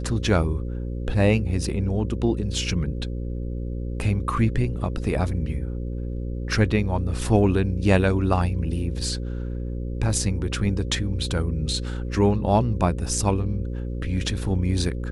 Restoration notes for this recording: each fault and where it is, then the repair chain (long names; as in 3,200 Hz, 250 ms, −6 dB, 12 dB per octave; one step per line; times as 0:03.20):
mains buzz 60 Hz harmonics 9 −29 dBFS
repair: hum removal 60 Hz, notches 9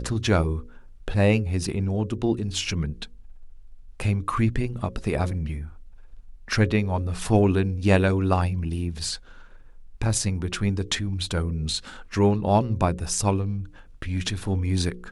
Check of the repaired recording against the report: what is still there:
none of them is left